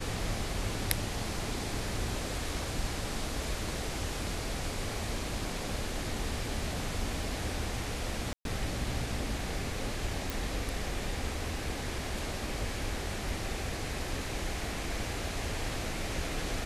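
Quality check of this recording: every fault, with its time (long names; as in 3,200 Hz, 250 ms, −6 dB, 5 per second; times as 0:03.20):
0:08.33–0:08.45: drop-out 122 ms
0:10.30: click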